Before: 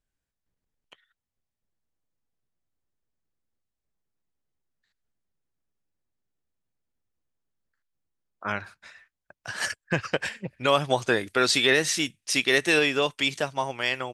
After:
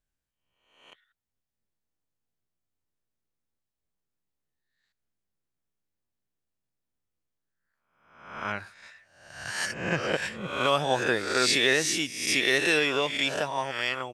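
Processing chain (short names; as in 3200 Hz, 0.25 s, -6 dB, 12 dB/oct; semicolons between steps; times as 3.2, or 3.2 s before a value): spectral swells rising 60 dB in 0.75 s; gain -4 dB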